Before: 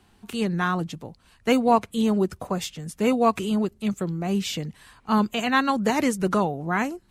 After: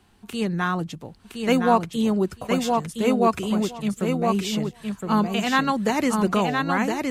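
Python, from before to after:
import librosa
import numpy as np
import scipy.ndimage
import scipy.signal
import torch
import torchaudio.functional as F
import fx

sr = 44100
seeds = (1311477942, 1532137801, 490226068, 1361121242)

y = fx.echo_feedback(x, sr, ms=1015, feedback_pct=15, wet_db=-4)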